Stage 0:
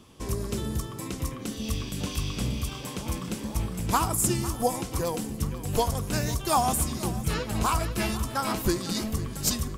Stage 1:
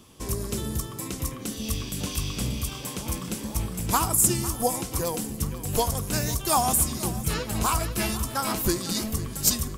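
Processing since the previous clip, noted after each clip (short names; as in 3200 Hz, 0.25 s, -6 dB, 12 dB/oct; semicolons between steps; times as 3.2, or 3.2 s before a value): high shelf 6700 Hz +9 dB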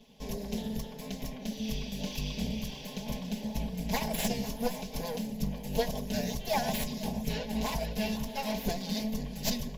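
minimum comb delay 4.7 ms; running mean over 5 samples; fixed phaser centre 340 Hz, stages 6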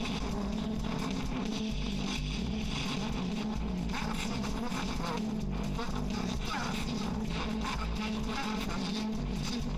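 minimum comb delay 0.82 ms; air absorption 78 m; fast leveller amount 100%; gain -5.5 dB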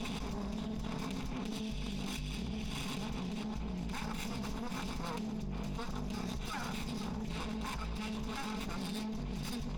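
tracing distortion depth 0.082 ms; gain -5 dB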